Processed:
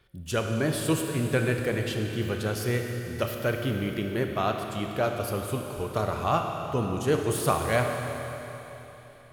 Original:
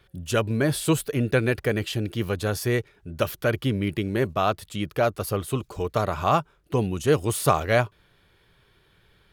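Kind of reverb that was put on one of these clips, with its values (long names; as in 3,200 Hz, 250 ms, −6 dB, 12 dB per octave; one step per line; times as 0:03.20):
four-comb reverb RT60 3.6 s, combs from 25 ms, DRR 3 dB
level −4.5 dB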